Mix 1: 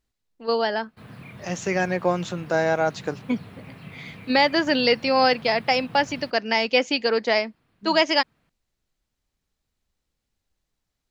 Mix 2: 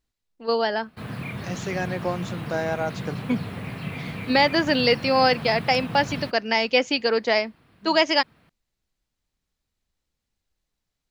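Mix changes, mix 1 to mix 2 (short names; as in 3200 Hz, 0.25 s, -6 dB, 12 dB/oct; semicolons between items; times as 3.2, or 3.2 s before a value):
second voice -5.0 dB; background +9.5 dB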